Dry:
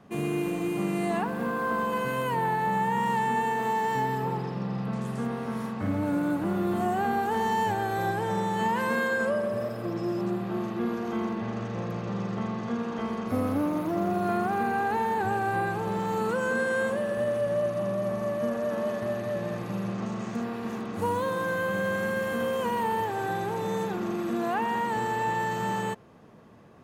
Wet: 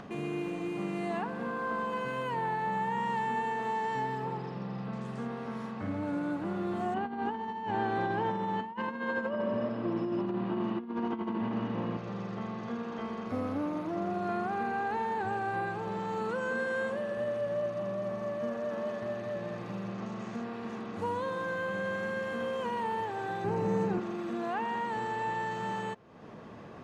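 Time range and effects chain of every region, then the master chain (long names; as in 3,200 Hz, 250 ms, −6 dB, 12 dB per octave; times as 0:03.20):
0:06.94–0:11.97: hollow resonant body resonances 260/950/2,900 Hz, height 14 dB, ringing for 60 ms + compressor whose output falls as the input rises −26 dBFS, ratio −0.5 + low-pass filter 4,000 Hz
0:23.44–0:24.00: low-shelf EQ 420 Hz +11.5 dB + notch filter 3,500 Hz, Q 5.6
whole clip: low-pass filter 5,600 Hz 12 dB per octave; low-shelf EQ 190 Hz −4 dB; upward compression, threshold −30 dBFS; level −5 dB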